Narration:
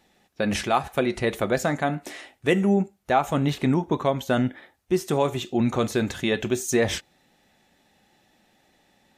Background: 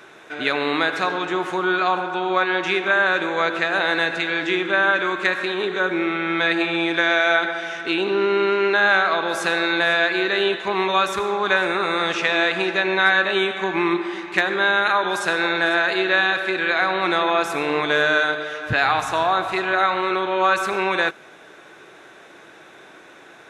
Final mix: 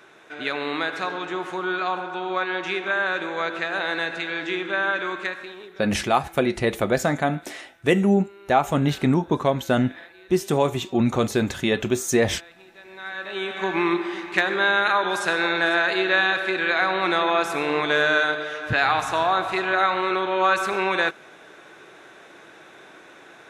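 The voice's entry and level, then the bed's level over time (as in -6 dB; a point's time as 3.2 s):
5.40 s, +2.0 dB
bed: 5.17 s -5.5 dB
6.01 s -28 dB
12.74 s -28 dB
13.65 s -1.5 dB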